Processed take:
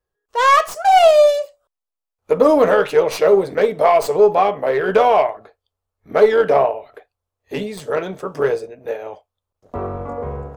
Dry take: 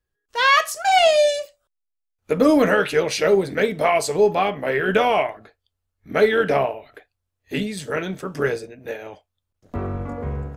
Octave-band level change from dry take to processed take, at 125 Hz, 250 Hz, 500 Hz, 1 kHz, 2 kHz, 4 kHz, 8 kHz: -2.5 dB, -2.0 dB, +5.5 dB, +5.5 dB, -2.5 dB, -3.0 dB, n/a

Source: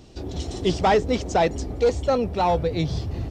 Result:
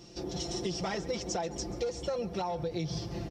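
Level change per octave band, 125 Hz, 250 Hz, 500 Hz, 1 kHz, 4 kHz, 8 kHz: -11.0, -10.0, -12.5, -15.0, -6.0, -1.0 dB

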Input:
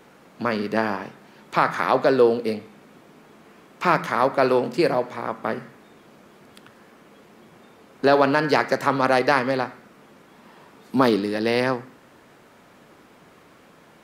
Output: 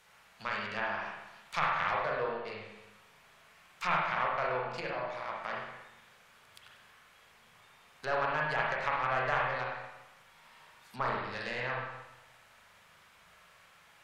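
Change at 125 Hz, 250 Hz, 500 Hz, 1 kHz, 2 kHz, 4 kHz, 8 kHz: -12.0 dB, -23.5 dB, -16.0 dB, -9.5 dB, -7.0 dB, -10.5 dB, n/a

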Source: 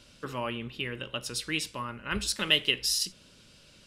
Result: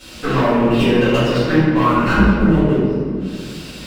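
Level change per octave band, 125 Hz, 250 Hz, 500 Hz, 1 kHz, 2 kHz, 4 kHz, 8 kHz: +23.5 dB, +25.0 dB, +21.5 dB, +19.5 dB, +10.5 dB, 0.0 dB, n/a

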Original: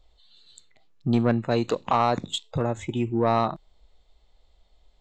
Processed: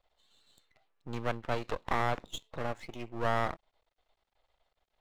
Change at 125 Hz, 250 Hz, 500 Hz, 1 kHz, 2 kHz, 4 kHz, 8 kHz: -12.0, -16.0, -10.0, -8.5, -1.0, -10.0, -9.5 dB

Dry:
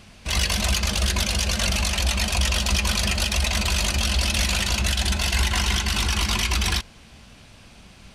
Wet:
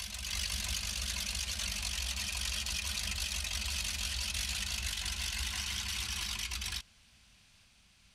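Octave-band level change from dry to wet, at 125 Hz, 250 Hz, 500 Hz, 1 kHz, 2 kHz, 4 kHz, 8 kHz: -18.0, -21.5, -23.0, -18.5, -13.0, -11.0, -10.0 dB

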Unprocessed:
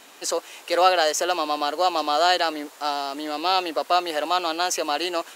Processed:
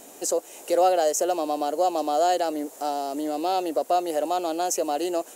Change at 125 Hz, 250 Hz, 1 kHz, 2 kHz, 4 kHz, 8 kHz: n/a, +2.5 dB, -2.5 dB, -12.0 dB, -11.5 dB, 0.0 dB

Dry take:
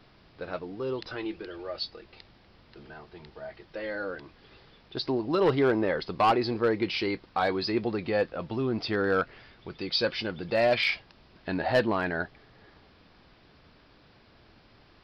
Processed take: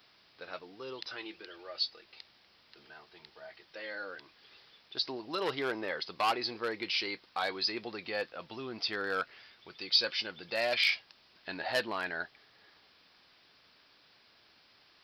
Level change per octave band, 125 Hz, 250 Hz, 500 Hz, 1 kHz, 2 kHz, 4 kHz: -18.0, -13.5, -10.5, -7.0, -3.0, +1.5 dB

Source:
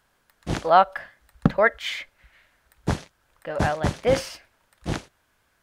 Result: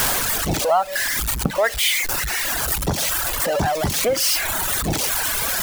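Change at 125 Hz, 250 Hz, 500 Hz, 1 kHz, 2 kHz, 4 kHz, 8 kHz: +1.5, +0.5, +2.0, 0.0, +6.0, +13.0, +22.0 dB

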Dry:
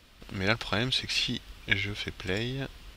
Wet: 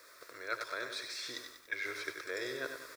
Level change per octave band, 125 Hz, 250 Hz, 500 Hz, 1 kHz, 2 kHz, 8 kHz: -29.0, -16.0, -6.5, -5.5, -7.0, -5.0 dB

